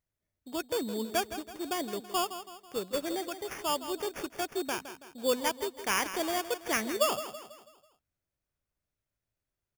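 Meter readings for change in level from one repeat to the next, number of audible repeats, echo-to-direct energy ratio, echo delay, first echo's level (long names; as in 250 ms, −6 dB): −7.0 dB, 4, −10.5 dB, 164 ms, −11.5 dB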